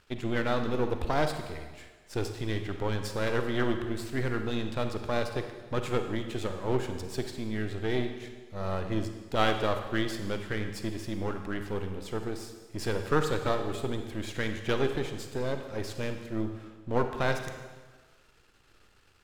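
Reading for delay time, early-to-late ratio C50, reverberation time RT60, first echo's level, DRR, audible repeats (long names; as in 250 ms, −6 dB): no echo audible, 7.0 dB, 1.4 s, no echo audible, 6.0 dB, no echo audible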